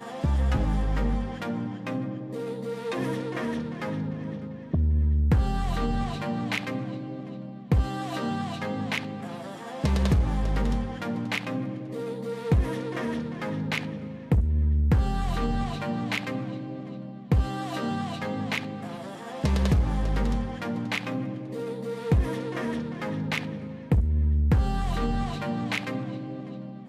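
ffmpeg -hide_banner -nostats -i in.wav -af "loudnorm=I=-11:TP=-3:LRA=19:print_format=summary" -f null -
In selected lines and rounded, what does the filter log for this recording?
Input Integrated:    -28.7 LUFS
Input True Peak:     -12.6 dBTP
Input LRA:             2.9 LU
Input Threshold:     -38.7 LUFS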